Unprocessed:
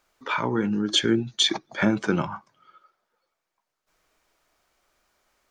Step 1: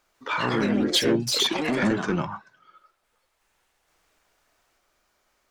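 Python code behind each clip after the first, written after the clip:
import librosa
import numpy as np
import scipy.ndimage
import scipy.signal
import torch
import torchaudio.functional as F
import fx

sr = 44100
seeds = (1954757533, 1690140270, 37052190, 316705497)

y = 10.0 ** (-16.0 / 20.0) * np.tanh(x / 10.0 ** (-16.0 / 20.0))
y = fx.echo_pitch(y, sr, ms=148, semitones=3, count=3, db_per_echo=-3.0)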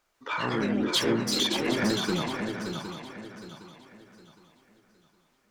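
y = fx.echo_swing(x, sr, ms=762, ratio=3, feedback_pct=32, wet_db=-6.5)
y = F.gain(torch.from_numpy(y), -4.0).numpy()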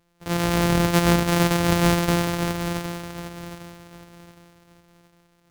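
y = np.r_[np.sort(x[:len(x) // 256 * 256].reshape(-1, 256), axis=1).ravel(), x[len(x) // 256 * 256:]]
y = F.gain(torch.from_numpy(y), 7.0).numpy()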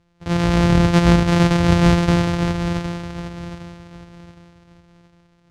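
y = scipy.signal.sosfilt(scipy.signal.butter(2, 5900.0, 'lowpass', fs=sr, output='sos'), x)
y = fx.peak_eq(y, sr, hz=73.0, db=10.5, octaves=2.3)
y = F.gain(torch.from_numpy(y), 1.5).numpy()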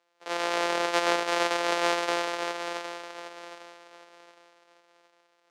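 y = scipy.signal.sosfilt(scipy.signal.butter(4, 450.0, 'highpass', fs=sr, output='sos'), x)
y = F.gain(torch.from_numpy(y), -3.5).numpy()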